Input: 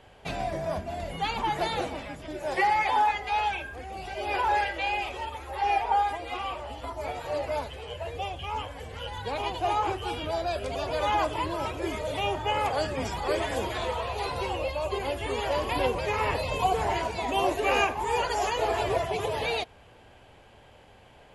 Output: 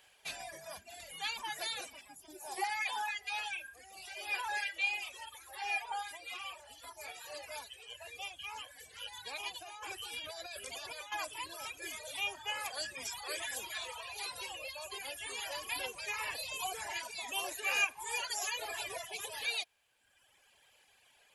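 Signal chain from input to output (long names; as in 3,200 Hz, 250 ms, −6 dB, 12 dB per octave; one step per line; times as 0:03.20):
first-order pre-emphasis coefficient 0.97
reverb reduction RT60 1.3 s
0:02.01–0:02.64: drawn EQ curve 160 Hz 0 dB, 390 Hz +8 dB, 550 Hz −8 dB, 780 Hz +8 dB, 1,800 Hz −12 dB, 12,000 Hz +3 dB
0:09.62–0:11.12: compressor whose output falls as the input rises −50 dBFS, ratio −1
hollow resonant body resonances 1,700/2,400 Hz, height 9 dB
level +4 dB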